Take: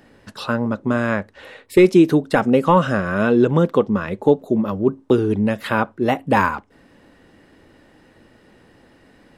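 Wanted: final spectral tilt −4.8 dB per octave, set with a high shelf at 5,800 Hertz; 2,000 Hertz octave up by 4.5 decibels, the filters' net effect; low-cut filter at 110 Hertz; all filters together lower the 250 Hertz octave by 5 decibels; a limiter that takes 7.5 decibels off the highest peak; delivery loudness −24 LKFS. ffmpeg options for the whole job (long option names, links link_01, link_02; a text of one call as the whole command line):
ffmpeg -i in.wav -af "highpass=110,equalizer=frequency=250:width_type=o:gain=-7,equalizer=frequency=2000:width_type=o:gain=7,highshelf=frequency=5800:gain=-5.5,volume=-2dB,alimiter=limit=-11dB:level=0:latency=1" out.wav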